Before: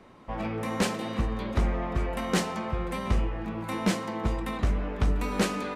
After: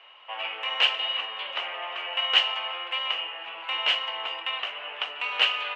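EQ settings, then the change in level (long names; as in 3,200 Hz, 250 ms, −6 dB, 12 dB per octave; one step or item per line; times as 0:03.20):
high-pass filter 660 Hz 24 dB per octave
low-pass with resonance 2,900 Hz, resonance Q 15
0.0 dB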